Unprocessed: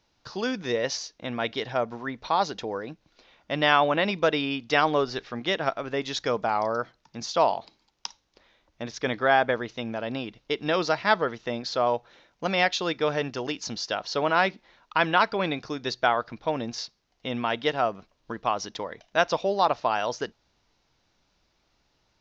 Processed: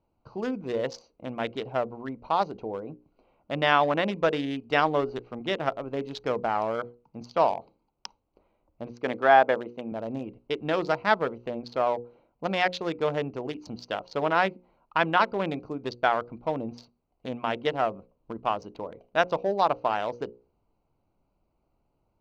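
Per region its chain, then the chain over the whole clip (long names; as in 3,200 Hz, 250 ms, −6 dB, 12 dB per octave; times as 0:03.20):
0:08.92–0:09.92: high-pass filter 180 Hz + dynamic equaliser 770 Hz, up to +5 dB, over −30 dBFS, Q 1.3
whole clip: adaptive Wiener filter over 25 samples; high-shelf EQ 5,300 Hz −10 dB; mains-hum notches 60/120/180/240/300/360/420/480/540 Hz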